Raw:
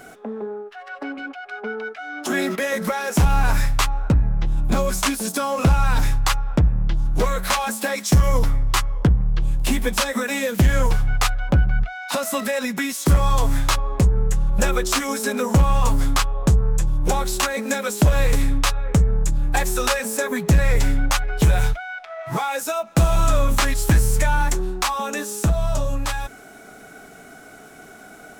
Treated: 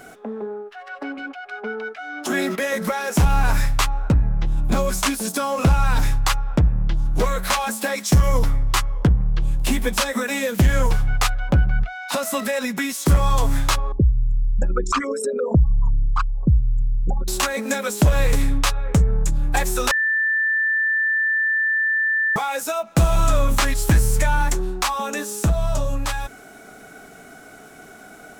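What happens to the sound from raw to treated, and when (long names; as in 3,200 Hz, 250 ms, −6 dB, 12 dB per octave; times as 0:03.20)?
0:13.92–0:17.28: spectral envelope exaggerated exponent 3
0:19.91–0:22.36: beep over 1,770 Hz −17 dBFS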